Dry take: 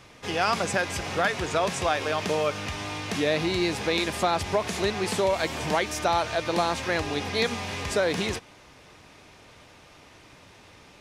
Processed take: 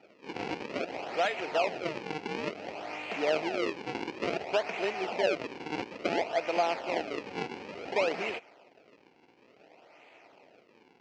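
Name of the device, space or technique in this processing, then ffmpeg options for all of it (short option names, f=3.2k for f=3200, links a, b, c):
circuit-bent sampling toy: -af "acrusher=samples=40:mix=1:aa=0.000001:lfo=1:lforange=64:lforate=0.57,highpass=410,equalizer=f=690:t=q:w=4:g=4,equalizer=f=1.1k:t=q:w=4:g=-8,equalizer=f=1.6k:t=q:w=4:g=-6,equalizer=f=2.5k:t=q:w=4:g=6,equalizer=f=3.6k:t=q:w=4:g=-9,lowpass=f=4.7k:w=0.5412,lowpass=f=4.7k:w=1.3066,volume=-2.5dB"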